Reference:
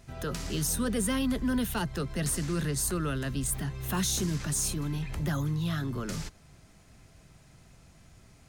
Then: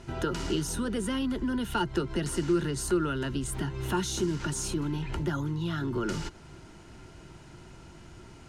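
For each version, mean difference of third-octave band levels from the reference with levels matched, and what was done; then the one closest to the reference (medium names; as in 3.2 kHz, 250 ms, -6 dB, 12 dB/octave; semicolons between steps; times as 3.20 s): 5.0 dB: Bessel low-pass 7.3 kHz, order 2; compression, threshold -36 dBFS, peak gain reduction 10.5 dB; small resonant body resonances 350/920/1400/2900 Hz, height 13 dB, ringing for 45 ms; trim +5.5 dB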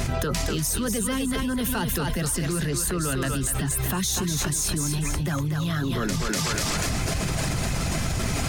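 10.0 dB: reverb removal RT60 0.57 s; thinning echo 244 ms, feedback 35%, high-pass 400 Hz, level -5 dB; level flattener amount 100%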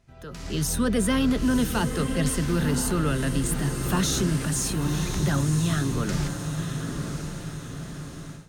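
7.0 dB: on a send: echo that smears into a reverb 1011 ms, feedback 50%, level -6.5 dB; on the sum: level rider gain up to 16 dB; treble shelf 6.7 kHz -7.5 dB; trim -9 dB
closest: first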